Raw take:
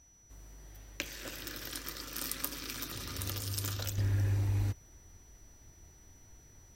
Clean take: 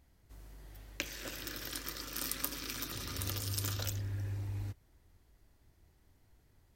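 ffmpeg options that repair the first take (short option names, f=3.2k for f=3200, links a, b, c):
-af "bandreject=f=5.9k:w=30,agate=range=-21dB:threshold=-50dB,asetnsamples=n=441:p=0,asendcmd='3.98 volume volume -8dB',volume=0dB"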